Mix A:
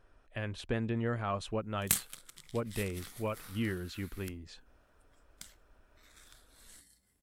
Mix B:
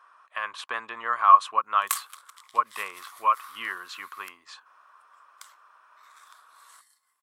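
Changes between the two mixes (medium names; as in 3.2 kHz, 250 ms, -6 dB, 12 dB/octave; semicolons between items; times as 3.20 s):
speech +6.0 dB; master: add resonant high-pass 1.1 kHz, resonance Q 11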